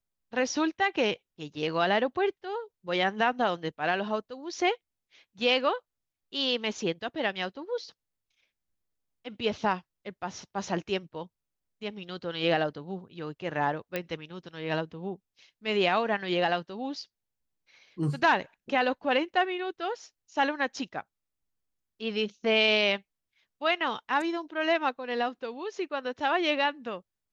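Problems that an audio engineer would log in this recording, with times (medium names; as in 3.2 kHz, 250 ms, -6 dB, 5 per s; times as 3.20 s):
13.96 s: pop -16 dBFS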